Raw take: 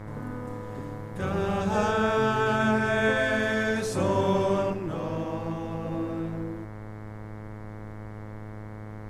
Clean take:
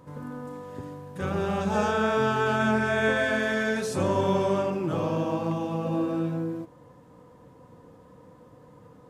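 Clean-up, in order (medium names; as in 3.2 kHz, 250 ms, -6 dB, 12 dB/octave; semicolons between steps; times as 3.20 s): de-hum 106.6 Hz, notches 21; noise print and reduce 13 dB; gain correction +4.5 dB, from 4.73 s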